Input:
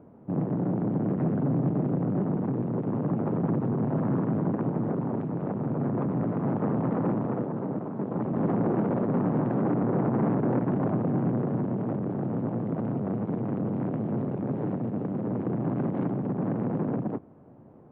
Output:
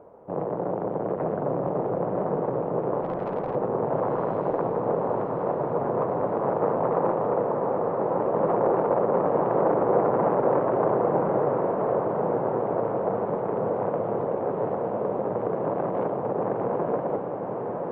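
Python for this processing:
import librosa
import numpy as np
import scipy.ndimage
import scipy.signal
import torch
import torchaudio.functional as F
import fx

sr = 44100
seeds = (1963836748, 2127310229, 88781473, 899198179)

y = fx.tube_stage(x, sr, drive_db=33.0, bias=0.75, at=(3.0, 3.54), fade=0.02)
y = fx.graphic_eq_10(y, sr, hz=(125, 250, 500, 1000), db=(-8, -11, 11, 7))
y = fx.echo_diffused(y, sr, ms=1092, feedback_pct=61, wet_db=-4.0)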